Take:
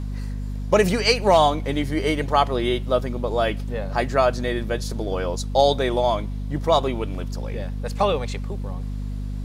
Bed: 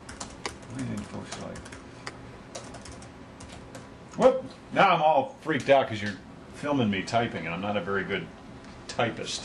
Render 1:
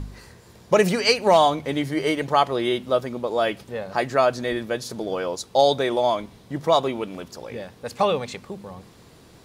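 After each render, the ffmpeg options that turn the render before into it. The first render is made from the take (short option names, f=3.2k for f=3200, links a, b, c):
-af "bandreject=f=50:t=h:w=4,bandreject=f=100:t=h:w=4,bandreject=f=150:t=h:w=4,bandreject=f=200:t=h:w=4,bandreject=f=250:t=h:w=4"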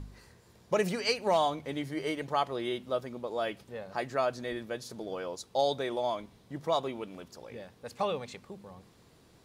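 -af "volume=-10.5dB"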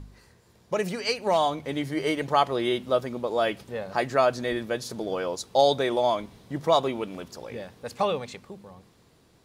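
-af "dynaudnorm=f=290:g=11:m=8dB"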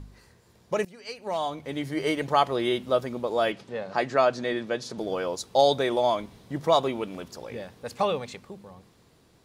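-filter_complex "[0:a]asettb=1/sr,asplit=3[a][b][c];[a]atrim=end=3.524[d];[b]atrim=start=3.52:end=4.98,asetpts=PTS-STARTPTS,afade=t=in:d=0.004:c=qsin,afade=t=out:st=1.456:d=0.004:c=qsin,highpass=130,lowpass=6.6k[e];[c]atrim=start=4.976[f];[d][e]acrossfade=d=0.004:c1=hsin:c2=qsin[g];[g][f]acrossfade=d=0.004:c1=qsin:c2=hsin,asplit=2[h][i];[h]atrim=end=0.85,asetpts=PTS-STARTPTS,afade=t=out:st=0.846:d=0.004:c=hsin:silence=0.0841395[j];[i]atrim=start=0.85,asetpts=PTS-STARTPTS,afade=t=in:d=1.22:silence=0.0841395[k];[j][k]concat=n=2:v=0:a=1"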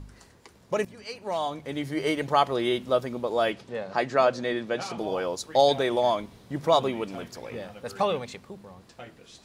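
-filter_complex "[1:a]volume=-17.5dB[a];[0:a][a]amix=inputs=2:normalize=0"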